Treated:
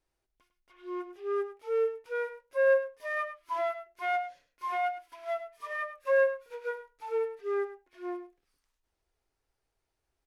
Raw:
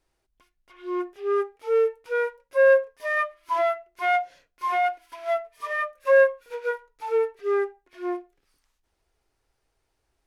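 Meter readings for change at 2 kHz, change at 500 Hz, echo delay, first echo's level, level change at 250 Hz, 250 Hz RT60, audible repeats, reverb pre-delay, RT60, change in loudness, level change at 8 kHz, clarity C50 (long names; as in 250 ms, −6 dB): −8.0 dB, −7.0 dB, 102 ms, −12.0 dB, −8.0 dB, no reverb audible, 1, no reverb audible, no reverb audible, −7.5 dB, can't be measured, no reverb audible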